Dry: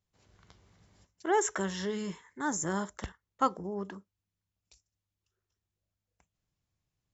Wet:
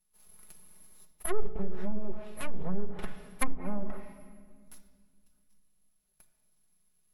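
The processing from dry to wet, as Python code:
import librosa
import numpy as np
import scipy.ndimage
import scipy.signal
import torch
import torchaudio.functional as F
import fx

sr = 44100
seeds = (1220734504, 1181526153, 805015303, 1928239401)

p1 = fx.rider(x, sr, range_db=4, speed_s=0.5)
p2 = x + (p1 * librosa.db_to_amplitude(0.0))
p3 = np.abs(p2)
p4 = fx.peak_eq(p3, sr, hz=240.0, db=-4.5, octaves=0.29)
p5 = p4 + 0.6 * np.pad(p4, (int(4.7 * sr / 1000.0), 0))[:len(p4)]
p6 = (np.kron(p5[::4], np.eye(4)[0]) * 4)[:len(p5)]
p7 = fx.room_shoebox(p6, sr, seeds[0], volume_m3=2800.0, walls='mixed', distance_m=0.96)
p8 = fx.env_lowpass_down(p7, sr, base_hz=410.0, full_db=-9.0)
y = p8 * librosa.db_to_amplitude(-6.0)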